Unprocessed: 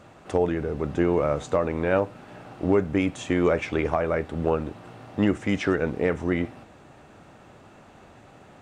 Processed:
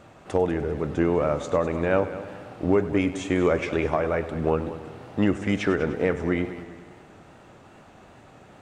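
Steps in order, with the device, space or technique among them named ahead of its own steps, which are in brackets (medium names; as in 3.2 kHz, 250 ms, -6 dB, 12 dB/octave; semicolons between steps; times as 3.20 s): multi-head tape echo (multi-head delay 99 ms, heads first and second, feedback 51%, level -16 dB; wow and flutter 47 cents)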